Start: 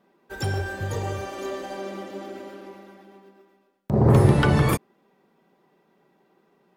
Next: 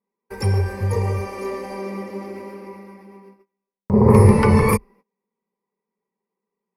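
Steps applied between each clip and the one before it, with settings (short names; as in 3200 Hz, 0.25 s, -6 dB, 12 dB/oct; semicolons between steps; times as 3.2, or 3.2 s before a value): ripple EQ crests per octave 0.88, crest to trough 14 dB; gate -49 dBFS, range -26 dB; bell 3900 Hz -10 dB 0.72 oct; gain +2.5 dB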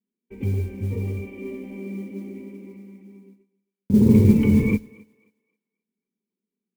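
vocal tract filter i; modulation noise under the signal 31 dB; thinning echo 0.266 s, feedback 27%, high-pass 330 Hz, level -22 dB; gain +7 dB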